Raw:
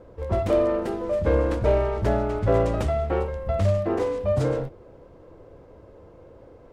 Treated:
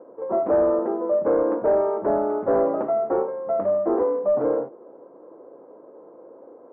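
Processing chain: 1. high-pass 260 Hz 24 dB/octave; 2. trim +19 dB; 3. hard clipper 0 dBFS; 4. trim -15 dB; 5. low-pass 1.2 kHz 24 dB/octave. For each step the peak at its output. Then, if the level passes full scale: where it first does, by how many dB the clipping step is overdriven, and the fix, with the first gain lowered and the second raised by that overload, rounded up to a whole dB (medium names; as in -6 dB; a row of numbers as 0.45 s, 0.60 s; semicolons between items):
-10.0 dBFS, +9.0 dBFS, 0.0 dBFS, -15.0 dBFS, -13.5 dBFS; step 2, 9.0 dB; step 2 +10 dB, step 4 -6 dB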